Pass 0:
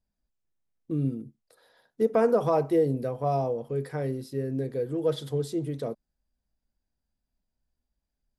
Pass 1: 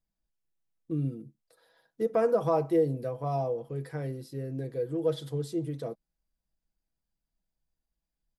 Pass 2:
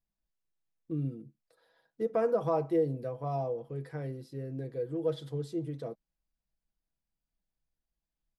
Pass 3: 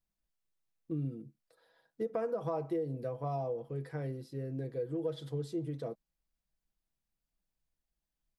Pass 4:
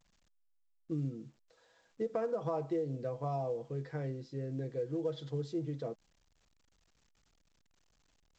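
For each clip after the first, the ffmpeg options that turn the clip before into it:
-af "aecho=1:1:6.1:0.44,volume=-4.5dB"
-af "highshelf=f=7k:g=-9.5,volume=-3dB"
-af "acompressor=threshold=-31dB:ratio=6"
-ar 16000 -c:a pcm_alaw

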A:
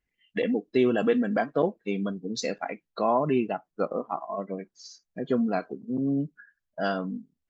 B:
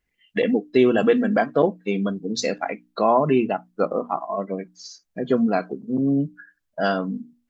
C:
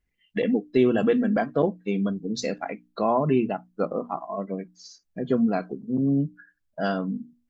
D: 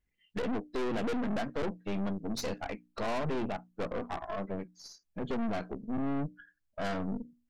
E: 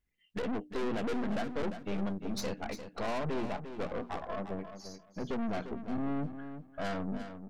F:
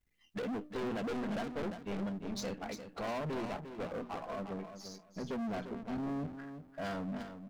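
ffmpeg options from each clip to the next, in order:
-af "bandreject=f=60:t=h:w=6,bandreject=f=120:t=h:w=6,bandreject=f=180:t=h:w=6,bandreject=f=240:t=h:w=6,bandreject=f=300:t=h:w=6,volume=6dB"
-af "lowshelf=f=220:g=9.5,volume=-6dB"
-af "aeval=exprs='(tanh(35.5*val(0)+0.7)-tanh(0.7))/35.5':c=same"
-af "aecho=1:1:349|698|1047:0.316|0.0601|0.0114,volume=-1.5dB"
-af "aeval=exprs='if(lt(val(0),0),0.251*val(0),val(0))':c=same,volume=5.5dB"

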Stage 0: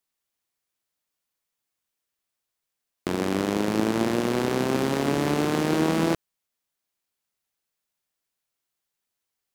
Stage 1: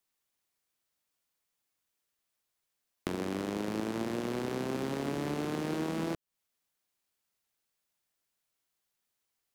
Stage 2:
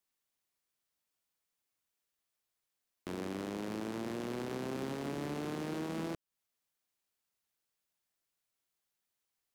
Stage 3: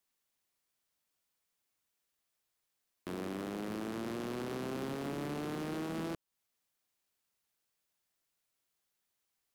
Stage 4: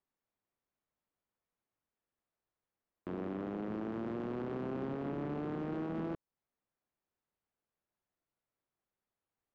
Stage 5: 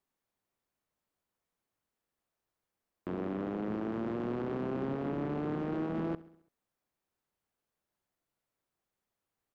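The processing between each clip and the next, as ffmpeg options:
-filter_complex "[0:a]acrossover=split=500|5100[a][b][c];[a]acompressor=threshold=-34dB:ratio=4[d];[b]acompressor=threshold=-40dB:ratio=4[e];[c]acompressor=threshold=-52dB:ratio=4[f];[d][e][f]amix=inputs=3:normalize=0"
-af "alimiter=level_in=2.5dB:limit=-24dB:level=0:latency=1:release=12,volume=-2.5dB,volume=-3.5dB"
-af "asoftclip=type=tanh:threshold=-34.5dB,volume=2.5dB"
-af "adynamicsmooth=sensitivity=1:basefreq=1.5k,volume=1dB"
-af "aecho=1:1:67|134|201|268|335:0.1|0.057|0.0325|0.0185|0.0106,volume=3.5dB"

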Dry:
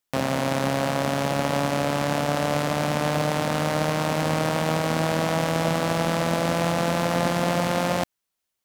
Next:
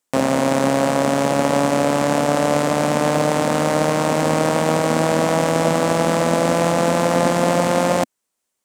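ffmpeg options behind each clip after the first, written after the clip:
-af "equalizer=f=250:t=o:w=1:g=8,equalizer=f=500:t=o:w=1:g=7,equalizer=f=1k:t=o:w=1:g=5,equalizer=f=2k:t=o:w=1:g=3,equalizer=f=8k:t=o:w=1:g=10,volume=-1dB"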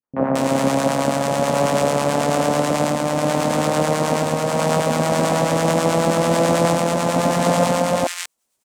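-filter_complex "[0:a]acrossover=split=350|1700[a][b][c];[b]adelay=30[d];[c]adelay=220[e];[a][d][e]amix=inputs=3:normalize=0,acrossover=split=910[f][g];[f]aeval=exprs='val(0)*(1-0.5/2+0.5/2*cos(2*PI*9.2*n/s))':c=same[h];[g]aeval=exprs='val(0)*(1-0.5/2-0.5/2*cos(2*PI*9.2*n/s))':c=same[i];[h][i]amix=inputs=2:normalize=0,dynaudnorm=f=110:g=3:m=12.5dB,volume=-4.5dB"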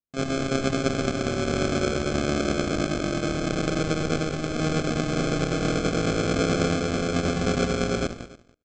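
-af "aresample=16000,acrusher=samples=17:mix=1:aa=0.000001,aresample=44100,aecho=1:1:286:0.106,volume=-6.5dB"

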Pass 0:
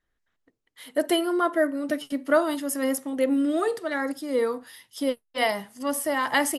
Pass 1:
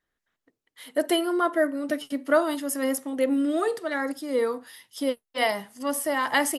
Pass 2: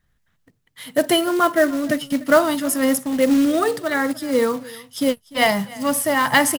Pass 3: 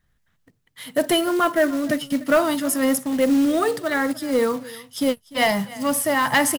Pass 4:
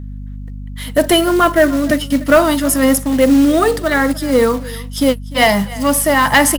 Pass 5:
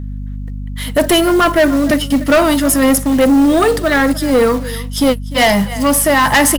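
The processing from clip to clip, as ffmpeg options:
-af "lowshelf=f=79:g=-11"
-af "lowshelf=f=220:t=q:w=1.5:g=13,aecho=1:1:297:0.0891,acrusher=bits=4:mode=log:mix=0:aa=0.000001,volume=7.5dB"
-af "acontrast=78,volume=-7.5dB"
-af "aeval=exprs='val(0)+0.02*(sin(2*PI*50*n/s)+sin(2*PI*2*50*n/s)/2+sin(2*PI*3*50*n/s)/3+sin(2*PI*4*50*n/s)/4+sin(2*PI*5*50*n/s)/5)':c=same,volume=7.5dB"
-af "asoftclip=type=tanh:threshold=-10dB,volume=4dB"

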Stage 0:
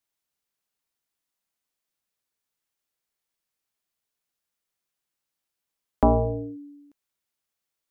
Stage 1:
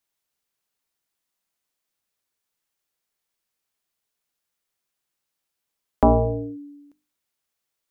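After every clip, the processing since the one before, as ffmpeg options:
-af "bandreject=f=50:t=h:w=6,bandreject=f=100:t=h:w=6,bandreject=f=150:t=h:w=6,bandreject=f=200:t=h:w=6,bandreject=f=250:t=h:w=6,bandreject=f=300:t=h:w=6,volume=3dB"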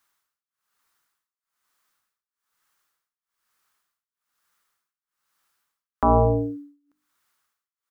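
-af "firequalizer=gain_entry='entry(630,0);entry(1200,14);entry(2400,3)':delay=0.05:min_phase=1,tremolo=f=1.1:d=0.96,volume=5dB"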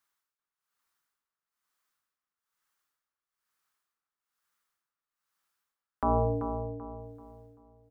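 -filter_complex "[0:a]asplit=2[a][b];[b]adelay=386,lowpass=f=1.7k:p=1,volume=-8dB,asplit=2[c][d];[d]adelay=386,lowpass=f=1.7k:p=1,volume=0.39,asplit=2[e][f];[f]adelay=386,lowpass=f=1.7k:p=1,volume=0.39,asplit=2[g][h];[h]adelay=386,lowpass=f=1.7k:p=1,volume=0.39[i];[a][c][e][g][i]amix=inputs=5:normalize=0,volume=-8.5dB"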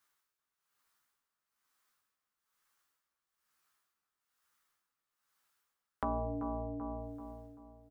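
-filter_complex "[0:a]asplit=2[a][b];[b]adelay=14,volume=-4.5dB[c];[a][c]amix=inputs=2:normalize=0,acompressor=threshold=-38dB:ratio=3,volume=1.5dB"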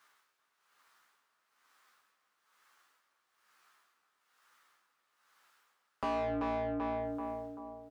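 -filter_complex "[0:a]asplit=2[a][b];[b]highpass=f=720:p=1,volume=28dB,asoftclip=type=tanh:threshold=-20.5dB[c];[a][c]amix=inputs=2:normalize=0,lowpass=f=2.1k:p=1,volume=-6dB,volume=-5.5dB"

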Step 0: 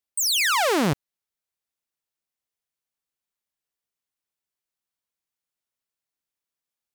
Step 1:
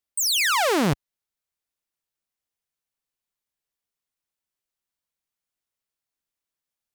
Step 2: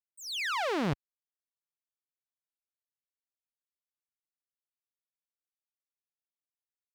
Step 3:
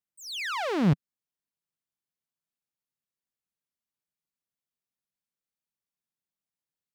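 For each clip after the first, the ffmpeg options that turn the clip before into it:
-af "lowshelf=f=70:g=6"
-filter_complex "[0:a]agate=range=-33dB:threshold=-16dB:ratio=3:detection=peak,acrossover=split=5000[a][b];[b]acompressor=threshold=-47dB:ratio=4:attack=1:release=60[c];[a][c]amix=inputs=2:normalize=0,volume=-4.5dB"
-af "equalizer=f=170:w=1.1:g=11.5"

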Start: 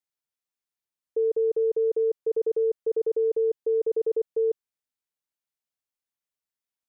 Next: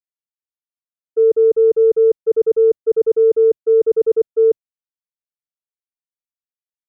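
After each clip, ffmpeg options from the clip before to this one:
-af "acontrast=57,lowshelf=f=420:g=12,agate=range=-33dB:threshold=-7dB:ratio=3:detection=peak,volume=4.5dB"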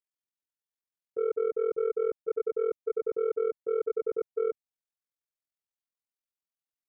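-af "asoftclip=type=tanh:threshold=-11.5dB,alimiter=limit=-21.5dB:level=0:latency=1:release=199,tremolo=f=42:d=0.889"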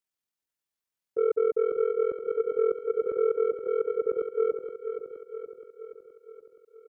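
-af "aecho=1:1:472|944|1416|1888|2360|2832|3304:0.398|0.231|0.134|0.0777|0.0451|0.0261|0.0152,volume=4dB"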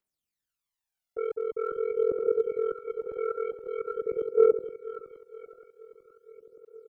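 -af "aphaser=in_gain=1:out_gain=1:delay=1.5:decay=0.68:speed=0.45:type=triangular,volume=-2.5dB"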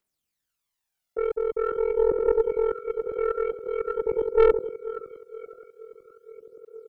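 -af "aeval=exprs='(tanh(7.08*val(0)+0.3)-tanh(0.3))/7.08':c=same,volume=6dB"

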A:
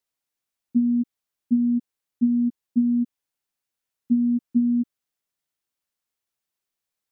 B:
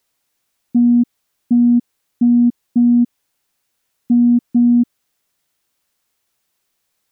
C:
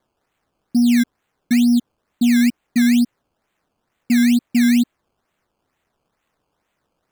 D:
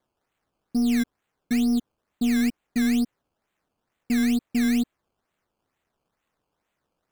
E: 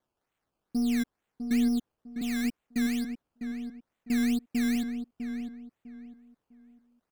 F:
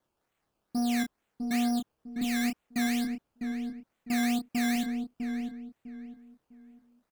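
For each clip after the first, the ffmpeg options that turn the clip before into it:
-af "acontrast=90,alimiter=limit=-15.5dB:level=0:latency=1:release=15,volume=7.5dB"
-af "acrusher=samples=16:mix=1:aa=0.000001:lfo=1:lforange=16:lforate=2.2,volume=-2.5dB"
-filter_complex "[0:a]tremolo=f=220:d=0.333,asplit=2[a][b];[b]volume=18.5dB,asoftclip=hard,volume=-18.5dB,volume=-9.5dB[c];[a][c]amix=inputs=2:normalize=0,volume=-7.5dB"
-filter_complex "[0:a]asplit=2[a][b];[b]adelay=652,lowpass=f=1.7k:p=1,volume=-7.5dB,asplit=2[c][d];[d]adelay=652,lowpass=f=1.7k:p=1,volume=0.29,asplit=2[e][f];[f]adelay=652,lowpass=f=1.7k:p=1,volume=0.29,asplit=2[g][h];[h]adelay=652,lowpass=f=1.7k:p=1,volume=0.29[i];[a][c][e][g][i]amix=inputs=5:normalize=0,volume=-5dB"
-filter_complex "[0:a]acrossover=split=740[a][b];[a]asoftclip=type=tanh:threshold=-28dB[c];[c][b]amix=inputs=2:normalize=0,asplit=2[d][e];[e]adelay=28,volume=-6dB[f];[d][f]amix=inputs=2:normalize=0,volume=2.5dB"

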